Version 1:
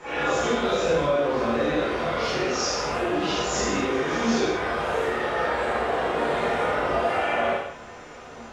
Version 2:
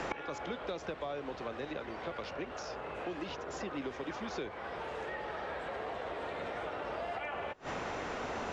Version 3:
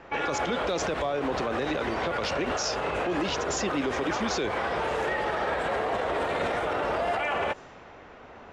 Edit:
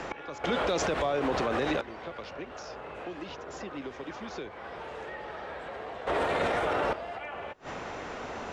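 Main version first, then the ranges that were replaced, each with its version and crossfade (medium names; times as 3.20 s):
2
0.44–1.81 s: from 3
6.07–6.93 s: from 3
not used: 1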